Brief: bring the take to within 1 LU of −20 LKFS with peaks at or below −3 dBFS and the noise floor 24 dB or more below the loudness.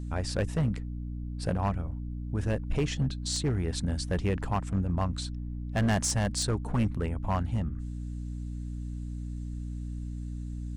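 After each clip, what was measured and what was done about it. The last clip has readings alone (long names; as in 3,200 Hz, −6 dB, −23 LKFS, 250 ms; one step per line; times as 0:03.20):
share of clipped samples 1.8%; peaks flattened at −21.5 dBFS; mains hum 60 Hz; hum harmonics up to 300 Hz; level of the hum −33 dBFS; integrated loudness −32.0 LKFS; sample peak −21.5 dBFS; target loudness −20.0 LKFS
→ clipped peaks rebuilt −21.5 dBFS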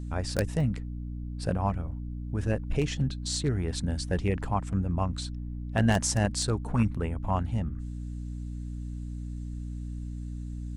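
share of clipped samples 0.0%; mains hum 60 Hz; hum harmonics up to 300 Hz; level of the hum −33 dBFS
→ mains-hum notches 60/120/180/240/300 Hz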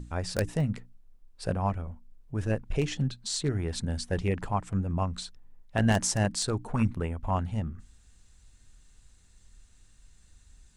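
mains hum none found; integrated loudness −30.5 LKFS; sample peak −12.5 dBFS; target loudness −20.0 LKFS
→ level +10.5 dB
brickwall limiter −3 dBFS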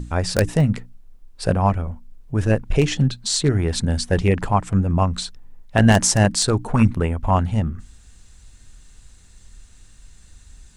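integrated loudness −20.0 LKFS; sample peak −3.0 dBFS; background noise floor −49 dBFS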